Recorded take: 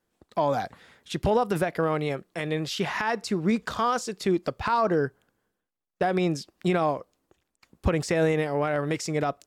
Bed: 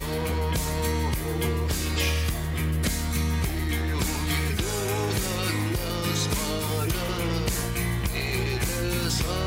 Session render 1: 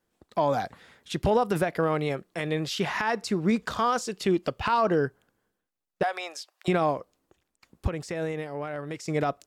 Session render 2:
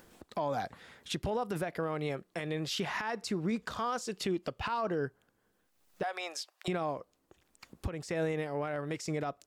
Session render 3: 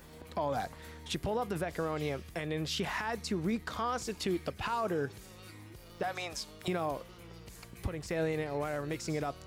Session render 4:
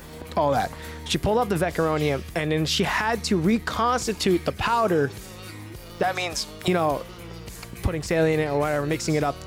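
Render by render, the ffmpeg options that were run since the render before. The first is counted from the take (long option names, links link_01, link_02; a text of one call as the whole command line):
ffmpeg -i in.wav -filter_complex "[0:a]asettb=1/sr,asplit=3[link_01][link_02][link_03];[link_01]atrim=end=4.104[link_04];[link_02]atrim=start=4.1:end=5.06,asetpts=PTS-STARTPTS,afade=type=in:duration=0.004:curve=qsin,afade=type=out:start_time=0.956:duration=0.004:curve=qsin,equalizer=frequency=2900:width_type=o:width=0.23:gain=9[link_05];[link_03]atrim=start=5.056[link_06];[link_04][link_05]acrossfade=duration=0.004:curve1=hsin:curve2=qsin[link_07];[link_07][link_06]acrossfade=duration=0.004:curve1=qsin:curve2=hsin,asettb=1/sr,asplit=3[link_08][link_09][link_10];[link_08]atrim=end=6.034[link_11];[link_09]atrim=start=6.03:end=6.68,asetpts=PTS-STARTPTS,afade=type=in:duration=0.004:curve=qsin,afade=type=out:start_time=0.646:duration=0.004:curve=qsin,highpass=frequency=650:width=0.5412,highpass=frequency=650:width=1.3066[link_12];[link_10]atrim=start=6.676[link_13];[link_11][link_12]acrossfade=duration=0.004:curve1=hsin:curve2=qsin[link_14];[link_14][link_13]acrossfade=duration=0.004:curve1=qsin:curve2=hsin,asplit=3[link_15][link_16][link_17];[link_15]atrim=end=7.872[link_18];[link_16]atrim=start=7.868:end=9.082,asetpts=PTS-STARTPTS,volume=-8dB[link_19];[link_17]atrim=start=9.078[link_20];[link_18][link_19]acrossfade=duration=0.004:curve1=hsin:curve2=hsin[link_21];[link_21][link_20]acrossfade=duration=0.004:curve1=hsin:curve2=hsin" out.wav
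ffmpeg -i in.wav -af "acompressor=mode=upward:threshold=-45dB:ratio=2.5,alimiter=level_in=0.5dB:limit=-24dB:level=0:latency=1:release=377,volume=-0.5dB" out.wav
ffmpeg -i in.wav -i bed.wav -filter_complex "[1:a]volume=-24dB[link_01];[0:a][link_01]amix=inputs=2:normalize=0" out.wav
ffmpeg -i in.wav -af "volume=11.5dB" out.wav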